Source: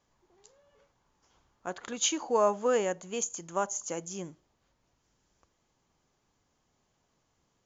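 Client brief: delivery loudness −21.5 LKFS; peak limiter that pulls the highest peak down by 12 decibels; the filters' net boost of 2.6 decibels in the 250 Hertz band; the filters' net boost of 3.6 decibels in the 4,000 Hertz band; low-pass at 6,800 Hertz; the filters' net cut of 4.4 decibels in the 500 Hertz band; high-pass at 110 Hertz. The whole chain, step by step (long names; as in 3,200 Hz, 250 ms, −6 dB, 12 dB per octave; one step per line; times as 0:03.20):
high-pass filter 110 Hz
low-pass filter 6,800 Hz
parametric band 250 Hz +5.5 dB
parametric band 500 Hz −6.5 dB
parametric band 4,000 Hz +5.5 dB
level +15.5 dB
brickwall limiter −9.5 dBFS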